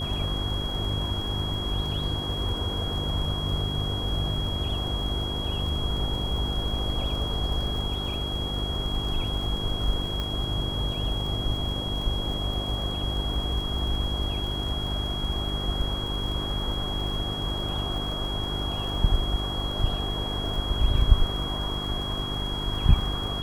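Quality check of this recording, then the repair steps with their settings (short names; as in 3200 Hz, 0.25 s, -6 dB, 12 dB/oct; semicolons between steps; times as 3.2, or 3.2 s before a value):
crackle 48/s -34 dBFS
hum 50 Hz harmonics 8 -33 dBFS
tone 3300 Hz -32 dBFS
10.2 pop -18 dBFS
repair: de-click; de-hum 50 Hz, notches 8; notch 3300 Hz, Q 30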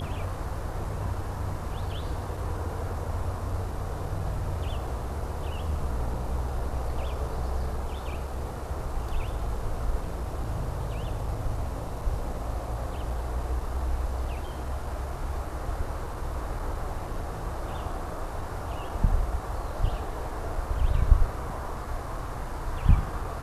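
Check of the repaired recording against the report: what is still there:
none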